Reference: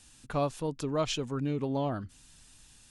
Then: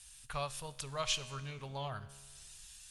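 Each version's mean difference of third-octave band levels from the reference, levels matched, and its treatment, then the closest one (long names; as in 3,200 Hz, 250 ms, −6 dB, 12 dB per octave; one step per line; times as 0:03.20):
9.0 dB: guitar amp tone stack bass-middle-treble 10-0-10
tuned comb filter 69 Hz, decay 1.4 s, harmonics all, mix 60%
level +12 dB
Opus 32 kbit/s 48,000 Hz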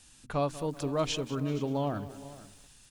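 5.0 dB: mains-hum notches 60/120/180/240/300 Hz
single-tap delay 468 ms −17.5 dB
feedback echo at a low word length 192 ms, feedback 55%, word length 8 bits, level −15 dB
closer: second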